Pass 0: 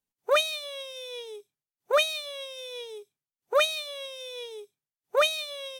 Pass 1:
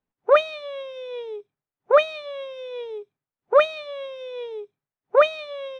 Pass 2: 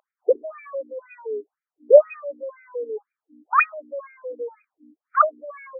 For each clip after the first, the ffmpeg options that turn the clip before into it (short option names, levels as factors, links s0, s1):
-af "lowpass=1600,volume=2.51"
-af "asubboost=boost=5.5:cutoff=130,aeval=exprs='val(0)+0.00794*(sin(2*PI*60*n/s)+sin(2*PI*2*60*n/s)/2+sin(2*PI*3*60*n/s)/3+sin(2*PI*4*60*n/s)/4+sin(2*PI*5*60*n/s)/5)':c=same,afftfilt=real='re*between(b*sr/1024,320*pow(1800/320,0.5+0.5*sin(2*PI*2*pts/sr))/1.41,320*pow(1800/320,0.5+0.5*sin(2*PI*2*pts/sr))*1.41)':imag='im*between(b*sr/1024,320*pow(1800/320,0.5+0.5*sin(2*PI*2*pts/sr))/1.41,320*pow(1800/320,0.5+0.5*sin(2*PI*2*pts/sr))*1.41)':win_size=1024:overlap=0.75,volume=2.24"